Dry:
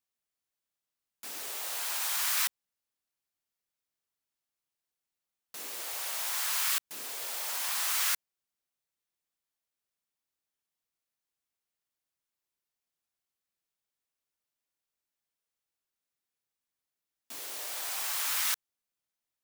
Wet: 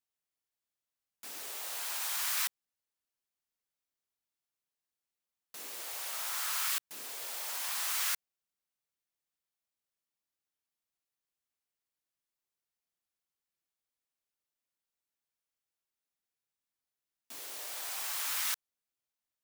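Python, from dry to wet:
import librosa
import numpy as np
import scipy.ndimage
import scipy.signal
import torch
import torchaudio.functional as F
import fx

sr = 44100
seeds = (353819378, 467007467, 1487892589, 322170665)

y = fx.peak_eq(x, sr, hz=1300.0, db=5.5, octaves=0.33, at=(6.13, 6.67))
y = y * 10.0 ** (-3.5 / 20.0)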